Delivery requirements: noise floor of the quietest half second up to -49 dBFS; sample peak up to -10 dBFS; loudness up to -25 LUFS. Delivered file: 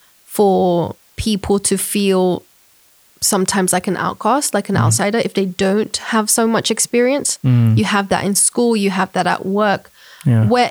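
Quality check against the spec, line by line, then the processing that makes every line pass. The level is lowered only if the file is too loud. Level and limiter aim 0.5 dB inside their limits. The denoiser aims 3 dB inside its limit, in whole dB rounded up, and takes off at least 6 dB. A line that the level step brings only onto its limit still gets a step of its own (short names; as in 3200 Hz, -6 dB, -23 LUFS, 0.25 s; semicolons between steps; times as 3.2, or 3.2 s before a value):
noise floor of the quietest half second -52 dBFS: OK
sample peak -4.0 dBFS: fail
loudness -16.0 LUFS: fail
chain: gain -9.5 dB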